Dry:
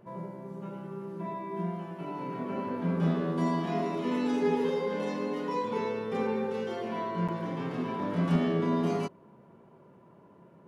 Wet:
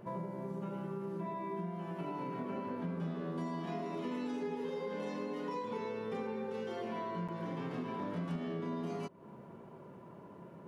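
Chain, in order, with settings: compressor 6:1, threshold -41 dBFS, peak gain reduction 18.5 dB; gain +4 dB

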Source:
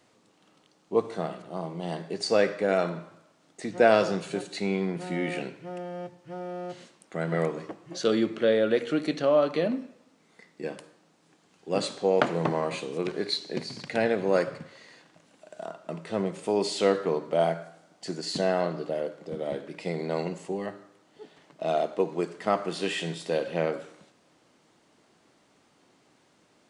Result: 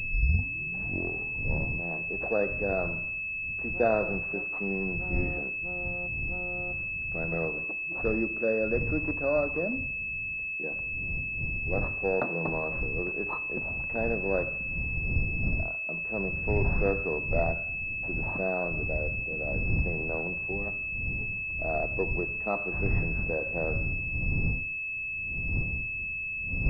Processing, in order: tape start at the beginning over 1.91 s; wind noise 100 Hz -30 dBFS; pulse-width modulation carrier 2600 Hz; gain -5 dB

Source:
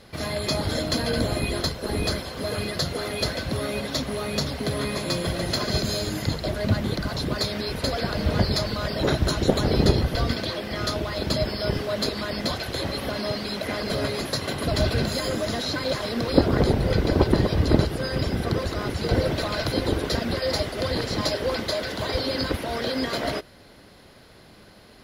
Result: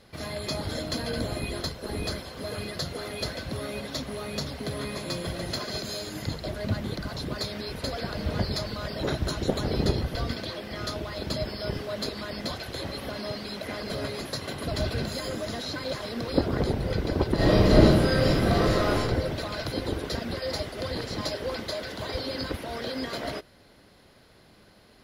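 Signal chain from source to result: 5.6–6.15 low shelf 180 Hz -10 dB; 17.35–18.98 reverb throw, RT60 0.92 s, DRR -10 dB; gain -6 dB

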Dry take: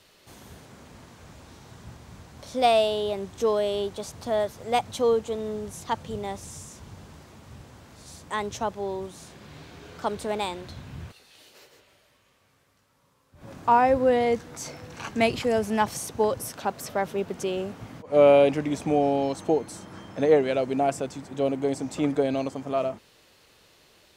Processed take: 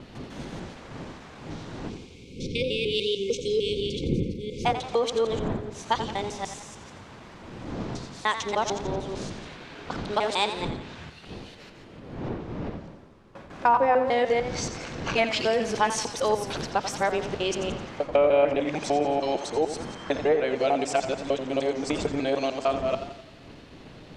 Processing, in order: local time reversal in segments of 0.15 s; wind noise 200 Hz -29 dBFS; low-pass opened by the level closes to 2200 Hz, open at -17 dBFS; low shelf 74 Hz +5.5 dB; treble ducked by the level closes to 2000 Hz, closed at -16.5 dBFS; spectral delete 1.9–4.65, 550–2100 Hz; compressor 2:1, threshold -25 dBFS, peak gain reduction 11.5 dB; RIAA curve recording; warbling echo 87 ms, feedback 52%, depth 78 cents, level -10.5 dB; gain +5 dB

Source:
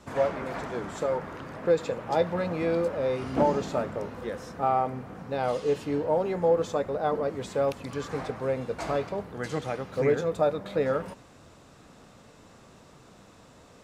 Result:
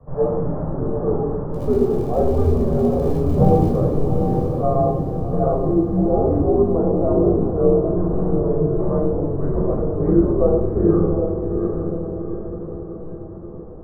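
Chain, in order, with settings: Bessel low-pass 700 Hz, order 6; 1.53–3.75 crackle 130/s -39 dBFS; frequency shift -100 Hz; diffused feedback echo 0.776 s, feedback 50%, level -5 dB; reverb RT60 0.70 s, pre-delay 13 ms, DRR -2.5 dB; gain +2.5 dB

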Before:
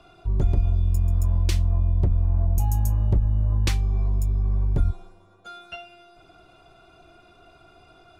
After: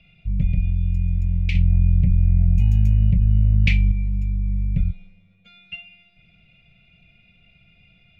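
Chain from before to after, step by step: EQ curve 100 Hz 0 dB, 190 Hz +8 dB, 350 Hz -24 dB, 530 Hz -9 dB, 890 Hz -28 dB, 1500 Hz -17 dB, 2300 Hz +12 dB, 3400 Hz -3 dB, 10000 Hz -29 dB; 1.55–3.92 fast leveller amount 100%

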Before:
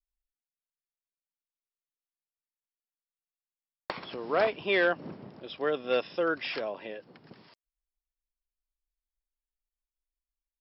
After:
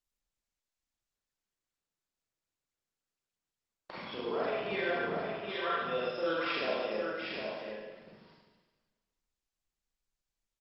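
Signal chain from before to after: reverb removal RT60 0.74 s; limiter -26 dBFS, peak gain reduction 11.5 dB; 5.17–5.85 resonant high-pass 1200 Hz, resonance Q 3.6; echo 0.763 s -4.5 dB; Schroeder reverb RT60 1.4 s, combs from 33 ms, DRR -7.5 dB; gain -5 dB; Opus 24 kbps 48000 Hz

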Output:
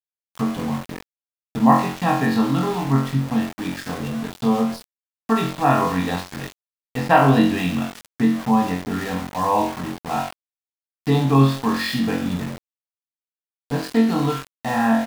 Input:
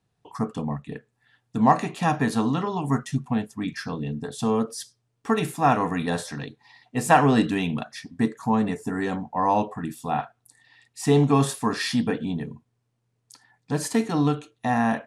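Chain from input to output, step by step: downsampling 11025 Hz; flutter echo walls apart 3.8 m, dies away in 0.51 s; sample gate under -28.5 dBFS

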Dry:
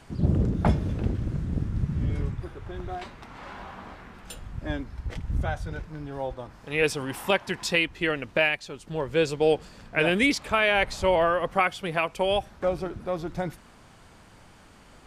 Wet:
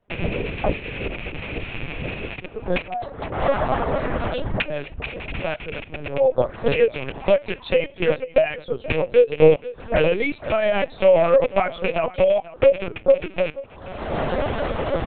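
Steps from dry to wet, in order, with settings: rattling part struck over -32 dBFS, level -14 dBFS; recorder AGC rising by 41 dB/s; gate with hold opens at -38 dBFS; reverb removal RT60 0.91 s; bell 530 Hz +15 dB 0.99 oct; 3.28–5.36 dispersion highs, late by 52 ms, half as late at 540 Hz; flange 0.73 Hz, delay 5.6 ms, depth 3.7 ms, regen +84%; echo 0.485 s -18 dB; LPC vocoder at 8 kHz pitch kept; gain +1 dB

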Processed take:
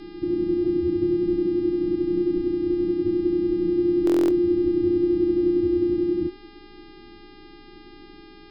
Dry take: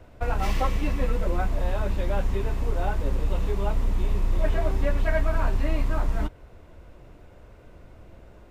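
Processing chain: minimum comb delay 0.82 ms; steep low-pass 610 Hz 36 dB/oct; buzz 400 Hz, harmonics 14, -49 dBFS -4 dB/oct; frequency shift -380 Hz; reverse echo 0.349 s -15.5 dB; stuck buffer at 4.05, samples 1024, times 10

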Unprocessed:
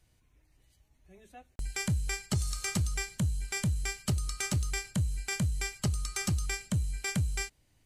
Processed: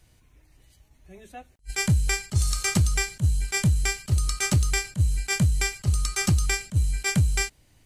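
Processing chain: attack slew limiter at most 470 dB/s; gain +9 dB

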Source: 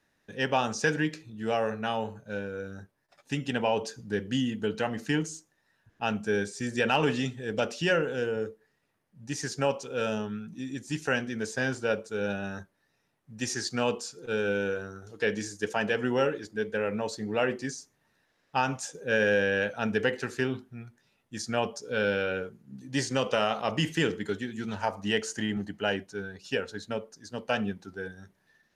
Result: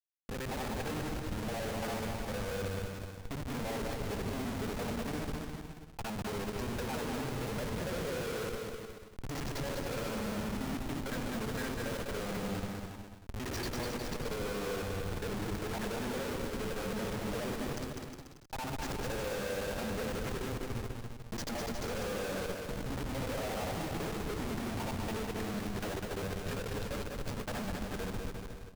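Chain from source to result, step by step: local time reversal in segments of 57 ms; high shelf 2700 Hz -3 dB; in parallel at -3 dB: compressor, threshold -38 dBFS, peak gain reduction 16 dB; on the sum: treble ducked by the level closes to 1200 Hz, closed at -22 dBFS; Schmitt trigger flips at -38 dBFS; on a send: bouncing-ball echo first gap 0.2 s, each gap 0.8×, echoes 5; on the sum: gain -7.5 dB

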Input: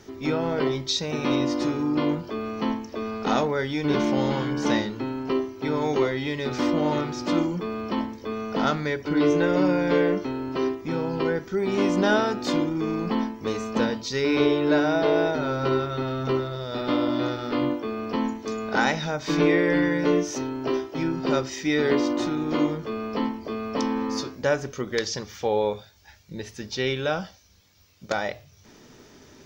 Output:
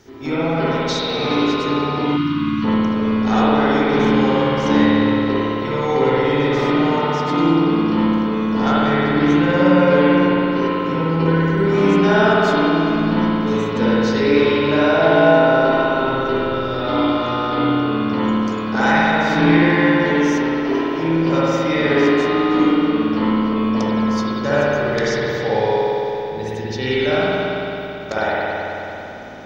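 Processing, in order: spring tank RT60 3.5 s, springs 55 ms, chirp 45 ms, DRR -10 dB; spectral gain 2.16–2.64, 360–920 Hz -23 dB; gain -1 dB

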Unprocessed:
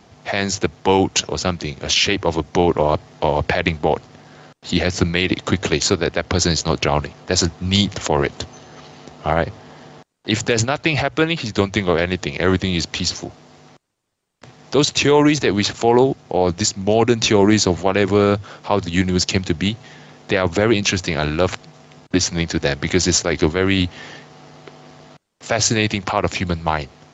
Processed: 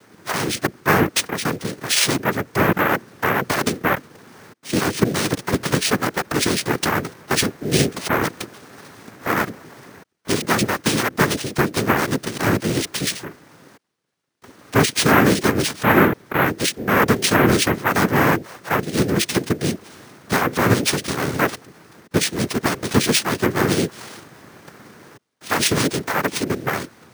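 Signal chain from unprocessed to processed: noise vocoder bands 3; careless resampling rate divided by 3×, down filtered, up hold; gain -1 dB

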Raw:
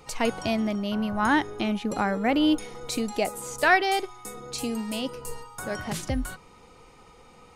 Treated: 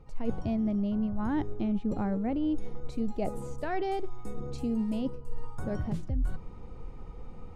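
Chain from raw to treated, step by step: tilt -4.5 dB/oct; reverse; compressor 6:1, threshold -23 dBFS, peak gain reduction 16.5 dB; reverse; dynamic EQ 1600 Hz, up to -4 dB, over -47 dBFS, Q 0.82; gain -3.5 dB

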